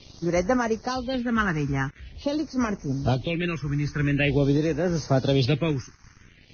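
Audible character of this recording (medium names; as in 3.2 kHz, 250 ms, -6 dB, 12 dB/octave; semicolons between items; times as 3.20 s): a quantiser's noise floor 8-bit, dither none; phasing stages 4, 0.46 Hz, lowest notch 560–3500 Hz; random-step tremolo; Vorbis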